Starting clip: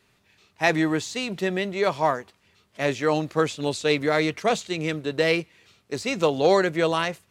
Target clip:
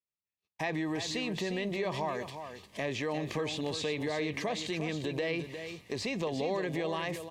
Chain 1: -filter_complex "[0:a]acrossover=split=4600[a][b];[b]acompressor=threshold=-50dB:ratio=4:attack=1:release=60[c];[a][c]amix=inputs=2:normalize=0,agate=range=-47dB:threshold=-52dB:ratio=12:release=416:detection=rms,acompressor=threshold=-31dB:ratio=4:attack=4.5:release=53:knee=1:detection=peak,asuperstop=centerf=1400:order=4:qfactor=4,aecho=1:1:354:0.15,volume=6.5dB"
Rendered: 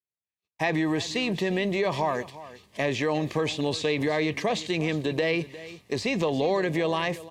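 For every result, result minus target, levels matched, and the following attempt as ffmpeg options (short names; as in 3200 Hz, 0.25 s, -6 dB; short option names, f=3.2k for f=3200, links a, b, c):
compressor: peak gain reduction -8 dB; echo-to-direct -7.5 dB
-filter_complex "[0:a]acrossover=split=4600[a][b];[b]acompressor=threshold=-50dB:ratio=4:attack=1:release=60[c];[a][c]amix=inputs=2:normalize=0,agate=range=-47dB:threshold=-52dB:ratio=12:release=416:detection=rms,acompressor=threshold=-41.5dB:ratio=4:attack=4.5:release=53:knee=1:detection=peak,asuperstop=centerf=1400:order=4:qfactor=4,aecho=1:1:354:0.15,volume=6.5dB"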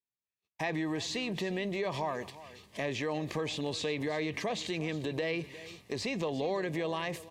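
echo-to-direct -7.5 dB
-filter_complex "[0:a]acrossover=split=4600[a][b];[b]acompressor=threshold=-50dB:ratio=4:attack=1:release=60[c];[a][c]amix=inputs=2:normalize=0,agate=range=-47dB:threshold=-52dB:ratio=12:release=416:detection=rms,acompressor=threshold=-41.5dB:ratio=4:attack=4.5:release=53:knee=1:detection=peak,asuperstop=centerf=1400:order=4:qfactor=4,aecho=1:1:354:0.355,volume=6.5dB"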